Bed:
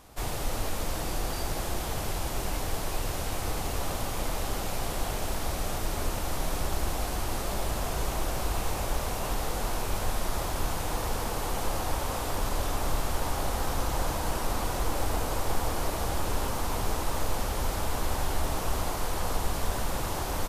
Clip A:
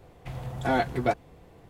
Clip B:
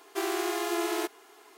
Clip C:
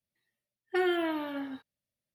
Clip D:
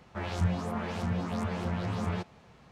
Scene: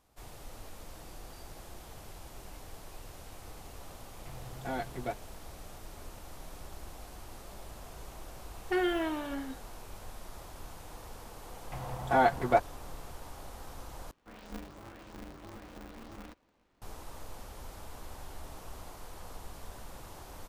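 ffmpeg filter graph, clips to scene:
-filter_complex "[1:a]asplit=2[s0][s1];[0:a]volume=0.15[s2];[s1]equalizer=f=950:w=0.83:g=10[s3];[4:a]aeval=exprs='val(0)*sgn(sin(2*PI*120*n/s))':c=same[s4];[s2]asplit=2[s5][s6];[s5]atrim=end=14.114[s7];[s4]atrim=end=2.71,asetpts=PTS-STARTPTS,volume=0.168[s8];[s6]atrim=start=16.816[s9];[s0]atrim=end=1.69,asetpts=PTS-STARTPTS,volume=0.266,afade=t=in:d=0.004:c=hsin,afade=t=out:st=1.686:d=0.004:c=hsin,adelay=4000[s10];[3:a]atrim=end=2.14,asetpts=PTS-STARTPTS,volume=0.841,afade=t=in:d=0.004:c=hsin,afade=t=out:st=2.136:d=0.004:c=hsin,adelay=7970[s11];[s3]atrim=end=1.69,asetpts=PTS-STARTPTS,volume=0.501,afade=t=in:d=0.004:c=hsin,afade=t=out:st=1.686:d=0.004:c=hsin,adelay=505386S[s12];[s7][s8]acrossfade=d=0.004:c1=hsin:c2=hsin[s13];[s13][s9]acrossfade=d=0.004:c1=hsin:c2=hsin[s14];[s14][s10][s11][s12]amix=inputs=4:normalize=0"

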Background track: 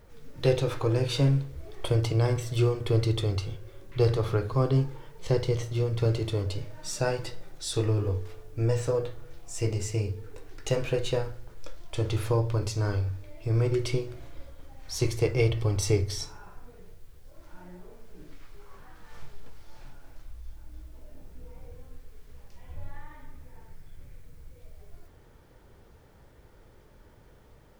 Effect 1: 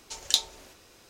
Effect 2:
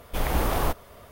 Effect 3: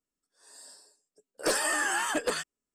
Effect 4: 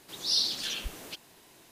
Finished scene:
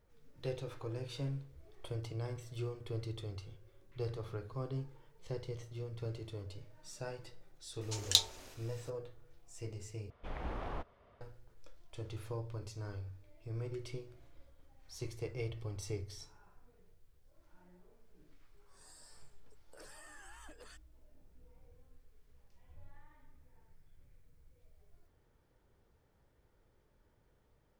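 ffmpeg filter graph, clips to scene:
-filter_complex "[0:a]volume=0.158[s0];[2:a]lowpass=2800[s1];[3:a]acompressor=threshold=0.00398:ratio=6:attack=3.2:release=140:knee=1:detection=peak[s2];[s0]asplit=2[s3][s4];[s3]atrim=end=10.104[s5];[s1]atrim=end=1.11,asetpts=PTS-STARTPTS,volume=0.158[s6];[s4]atrim=start=11.206[s7];[1:a]atrim=end=1.09,asetpts=PTS-STARTPTS,volume=0.668,afade=t=in:d=0.004:c=hsin,afade=t=out:st=1.086:d=0.004:c=hsin,adelay=7810[s8];[s2]atrim=end=2.74,asetpts=PTS-STARTPTS,volume=0.447,afade=t=in:d=0.004:c=hsin,afade=t=out:st=2.736:d=0.004:c=hsin,adelay=18340[s9];[s5][s6]acrossfade=d=0.004:c1=hsin:c2=hsin[s10];[s10][s7]acrossfade=d=0.004:c1=hsin:c2=hsin[s11];[s11][s8][s9]amix=inputs=3:normalize=0"

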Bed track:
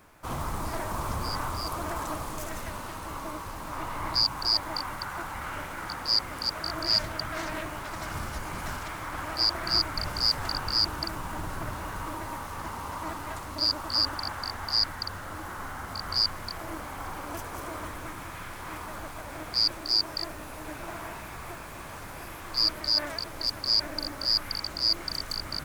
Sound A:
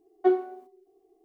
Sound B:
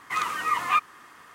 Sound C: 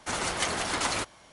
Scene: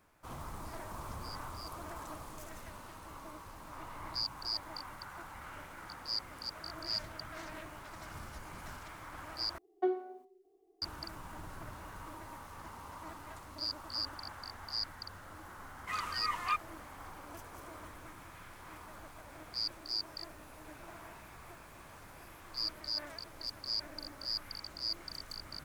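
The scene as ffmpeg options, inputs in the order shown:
-filter_complex "[0:a]volume=0.251[s0];[1:a]alimiter=limit=0.158:level=0:latency=1:release=290[s1];[s0]asplit=2[s2][s3];[s2]atrim=end=9.584[s4];[s1]atrim=end=1.24,asetpts=PTS-STARTPTS,volume=0.531[s5];[s3]atrim=start=10.816[s6];[2:a]atrim=end=1.34,asetpts=PTS-STARTPTS,volume=0.299,afade=t=in:d=0.004:c=hsin,afade=t=out:st=1.336:d=0.004:c=hsin,adelay=15770[s7];[s4][s5]acrossfade=d=0.004:c1=hsin:c2=hsin[s8];[s8][s6]acrossfade=d=0.004:c1=hsin:c2=hsin[s9];[s9][s7]amix=inputs=2:normalize=0"

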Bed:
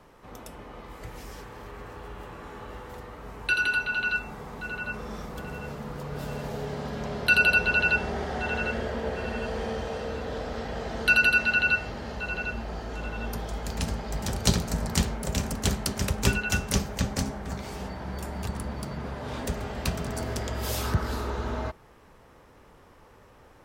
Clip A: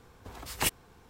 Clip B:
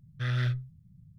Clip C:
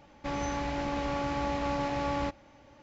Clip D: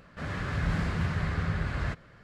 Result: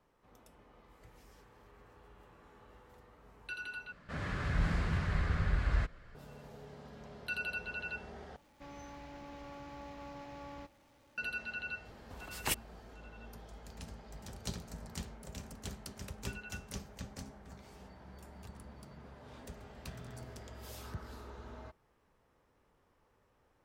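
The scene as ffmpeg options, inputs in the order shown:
-filter_complex "[0:a]volume=0.126[s0];[4:a]asubboost=boost=8.5:cutoff=56[s1];[3:a]aeval=exprs='val(0)+0.5*0.00501*sgn(val(0))':c=same[s2];[2:a]alimiter=level_in=2.37:limit=0.0631:level=0:latency=1:release=71,volume=0.422[s3];[s0]asplit=3[s4][s5][s6];[s4]atrim=end=3.924[s7];[s1]atrim=end=2.23,asetpts=PTS-STARTPTS,volume=0.631[s8];[s5]atrim=start=6.146:end=8.364[s9];[s2]atrim=end=2.82,asetpts=PTS-STARTPTS,volume=0.133[s10];[s6]atrim=start=11.176[s11];[1:a]atrim=end=1.09,asetpts=PTS-STARTPTS,volume=0.531,afade=t=in:d=0.004:c=hsin,afade=t=out:st=1.086:d=0.004:c=hsin,adelay=11850[s12];[s3]atrim=end=1.18,asetpts=PTS-STARTPTS,volume=0.168,afade=t=in:d=0.004:c=hsin,afade=t=out:st=1.176:d=0.004:c=hsin,adelay=19680[s13];[s7][s8]acrossfade=d=0.004:c1=hsin:c2=hsin[s14];[s14][s9]acrossfade=d=0.004:c1=hsin:c2=hsin[s15];[s15][s10]acrossfade=d=0.004:c1=hsin:c2=hsin[s16];[s16][s11]acrossfade=d=0.004:c1=hsin:c2=hsin[s17];[s17][s12][s13]amix=inputs=3:normalize=0"

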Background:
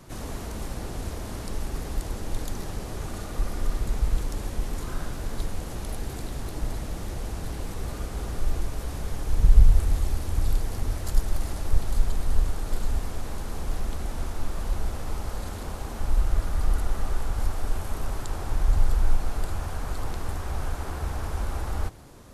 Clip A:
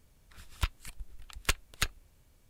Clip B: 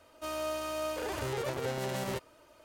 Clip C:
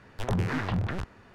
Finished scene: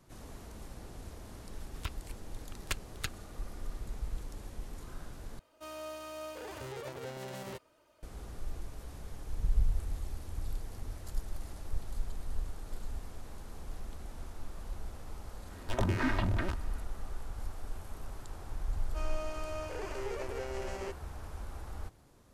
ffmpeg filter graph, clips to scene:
-filter_complex "[2:a]asplit=2[s0][s1];[0:a]volume=0.211[s2];[3:a]aecho=1:1:3.2:0.62[s3];[s1]highpass=310,equalizer=f=380:t=q:w=4:g=7,equalizer=f=2400:t=q:w=4:g=3,equalizer=f=3700:t=q:w=4:g=-10,lowpass=f=7800:w=0.5412,lowpass=f=7800:w=1.3066[s4];[s2]asplit=2[s5][s6];[s5]atrim=end=5.394[s7];[s0]atrim=end=2.64,asetpts=PTS-STARTPTS,volume=0.398[s8];[s6]atrim=start=8.026[s9];[1:a]atrim=end=2.49,asetpts=PTS-STARTPTS,volume=0.447,afade=t=in:d=0.004:c=hsin,afade=t=out:st=2.486:d=0.004:c=hsin,adelay=1220[s10];[s3]atrim=end=1.34,asetpts=PTS-STARTPTS,volume=0.75,afade=t=in:d=0.004:c=hsin,afade=t=out:st=1.336:d=0.004:c=hsin,adelay=15500[s11];[s4]atrim=end=2.64,asetpts=PTS-STARTPTS,volume=0.501,afade=t=in:d=0.004:c=hsin,afade=t=out:st=2.636:d=0.004:c=hsin,adelay=18730[s12];[s7][s8]acrossfade=d=0.004:c1=hsin:c2=hsin[s13];[s13][s9]acrossfade=d=0.004:c1=hsin:c2=hsin[s14];[s14][s10][s11][s12]amix=inputs=4:normalize=0"

